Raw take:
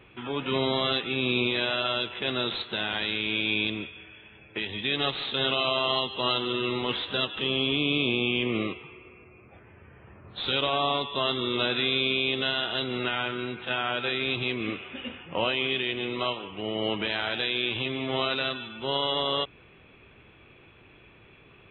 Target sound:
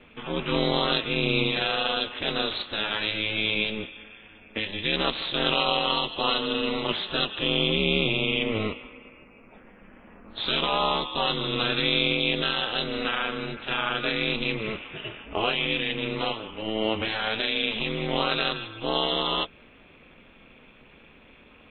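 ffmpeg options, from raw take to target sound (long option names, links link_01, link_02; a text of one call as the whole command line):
ffmpeg -i in.wav -af "flanger=delay=6:depth=1.6:regen=-48:speed=0.46:shape=sinusoidal,aeval=exprs='val(0)*sin(2*PI*110*n/s)':channel_layout=same,volume=8.5dB" out.wav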